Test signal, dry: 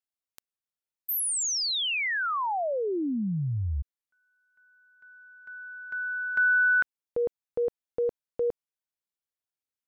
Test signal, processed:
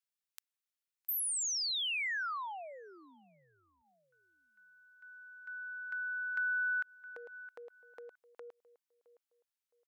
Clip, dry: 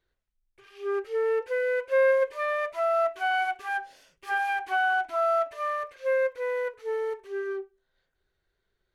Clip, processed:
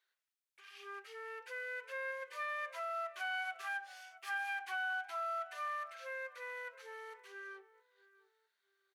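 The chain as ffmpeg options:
-filter_complex "[0:a]asplit=2[s0][s1];[s1]adelay=665,lowpass=f=1700:p=1,volume=0.0708,asplit=2[s2][s3];[s3]adelay=665,lowpass=f=1700:p=1,volume=0.28[s4];[s0][s2][s4]amix=inputs=3:normalize=0,acompressor=threshold=0.01:ratio=2:attack=25:release=75:detection=rms,highpass=1200"

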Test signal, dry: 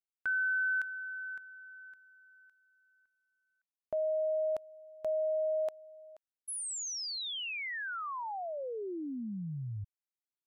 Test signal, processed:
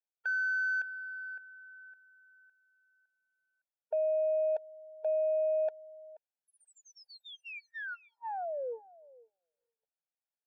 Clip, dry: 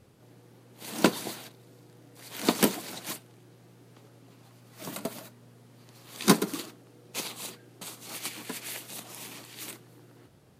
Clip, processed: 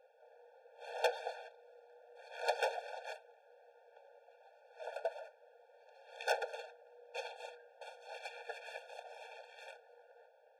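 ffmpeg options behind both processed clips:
-af "adynamicsmooth=sensitivity=0.5:basefreq=1900,aeval=exprs='(tanh(20*val(0)+0.6)-tanh(0.6))/20':c=same,afftfilt=real='re*eq(mod(floor(b*sr/1024/460),2),1)':imag='im*eq(mod(floor(b*sr/1024/460),2),1)':win_size=1024:overlap=0.75,volume=2"

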